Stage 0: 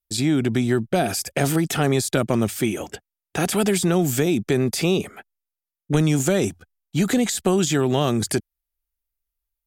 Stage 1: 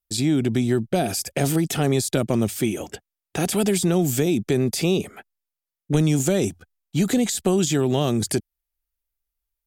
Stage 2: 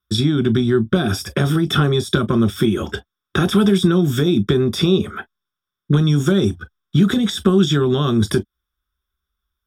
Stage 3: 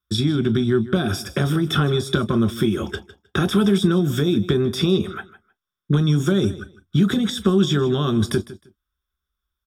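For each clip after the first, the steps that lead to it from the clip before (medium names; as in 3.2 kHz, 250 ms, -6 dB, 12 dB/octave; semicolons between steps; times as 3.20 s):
dynamic bell 1.4 kHz, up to -6 dB, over -39 dBFS, Q 0.89
compression 4:1, threshold -24 dBFS, peak gain reduction 9 dB; reverberation, pre-delay 3 ms, DRR 8.5 dB; trim -1.5 dB
feedback delay 156 ms, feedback 19%, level -16.5 dB; trim -3 dB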